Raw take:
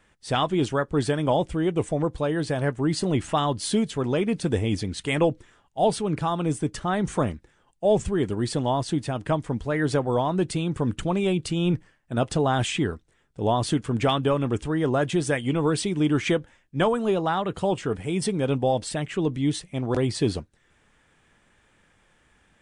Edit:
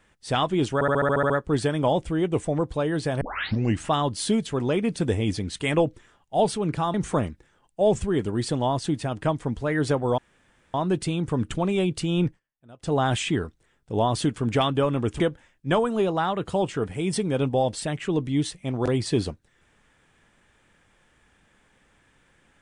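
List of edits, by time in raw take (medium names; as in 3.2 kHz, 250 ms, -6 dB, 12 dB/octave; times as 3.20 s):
0.74 s: stutter 0.07 s, 9 plays
2.65 s: tape start 0.59 s
6.38–6.98 s: delete
10.22 s: insert room tone 0.56 s
11.74–12.42 s: dip -24 dB, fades 0.14 s
14.68–16.29 s: delete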